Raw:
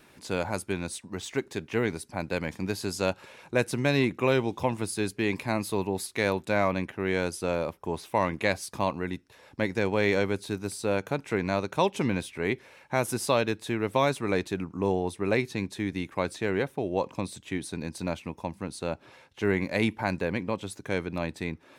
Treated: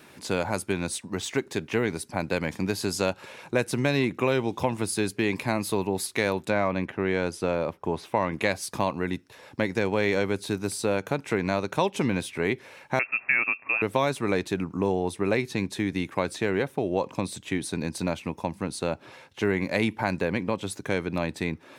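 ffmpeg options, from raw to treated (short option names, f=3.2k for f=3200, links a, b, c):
-filter_complex "[0:a]asettb=1/sr,asplit=3[a][b][c];[a]atrim=end=6.504[d];[b]atrim=start=6.5:end=8.32,asetpts=PTS-STARTPTS,afade=t=in:d=0.004:c=qsin,afade=t=out:st=1.816:d=0.004:c=qsin,lowpass=f=3.4k:p=1[e];[c]atrim=start=8.316[f];[d][e]acrossfade=d=0.004:c1=hsin:c2=qsin[g];[g][f]acrossfade=d=0.004:c1=qsin:c2=hsin,asettb=1/sr,asplit=3[h][i][j];[h]atrim=end=12.994[k];[i]atrim=start=12.99:end=13.82,asetpts=PTS-STARTPTS,afade=t=in:d=0.004:c=qsin,afade=t=out:st=0.826:d=0.004:c=qsin,lowpass=f=2.4k:t=q:w=0.5098,lowpass=f=2.4k:t=q:w=0.6013,lowpass=f=2.4k:t=q:w=0.9,lowpass=f=2.4k:t=q:w=2.563,afreqshift=-2800[l];[j]atrim=start=13.816[m];[k][l]acrossfade=d=0.004:c1=hsin:c2=qsin[n];[n][m]acrossfade=d=0.004:c1=qsin:c2=hsin,highpass=80,acompressor=threshold=-29dB:ratio=2,volume=5.5dB"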